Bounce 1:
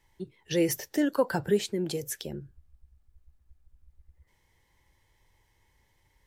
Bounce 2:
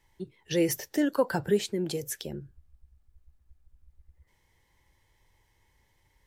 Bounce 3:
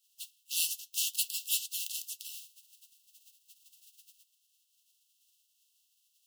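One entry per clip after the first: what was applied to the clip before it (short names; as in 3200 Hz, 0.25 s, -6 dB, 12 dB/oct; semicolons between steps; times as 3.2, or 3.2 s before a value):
nothing audible
spectral contrast lowered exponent 0.18; flange 0.59 Hz, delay 3.3 ms, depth 5.7 ms, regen -80%; brick-wall FIR high-pass 2600 Hz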